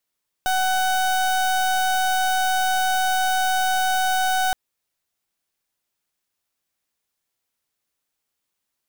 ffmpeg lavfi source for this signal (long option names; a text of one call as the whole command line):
ffmpeg -f lavfi -i "aevalsrc='0.0944*(2*lt(mod(749*t,1),0.31)-1)':duration=4.07:sample_rate=44100" out.wav